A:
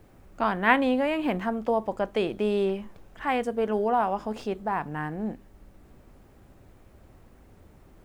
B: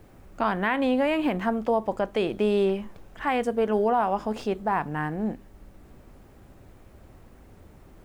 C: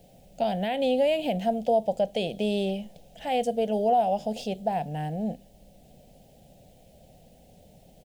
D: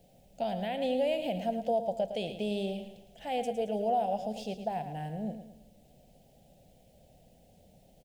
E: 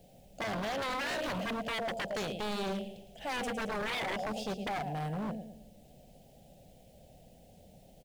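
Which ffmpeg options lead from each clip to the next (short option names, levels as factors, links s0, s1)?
-af "alimiter=limit=0.141:level=0:latency=1:release=158,volume=1.41"
-af "firequalizer=gain_entry='entry(100,0);entry(160,11);entry(350,-4);entry(510,11);entry(720,13);entry(1100,-20);entry(1600,-7);entry(3000,12)':delay=0.05:min_phase=1,volume=0.376"
-af "aecho=1:1:110|220|330|440|550:0.316|0.139|0.0612|0.0269|0.0119,volume=0.473"
-af "aeval=exprs='0.0224*(abs(mod(val(0)/0.0224+3,4)-2)-1)':c=same,volume=1.41"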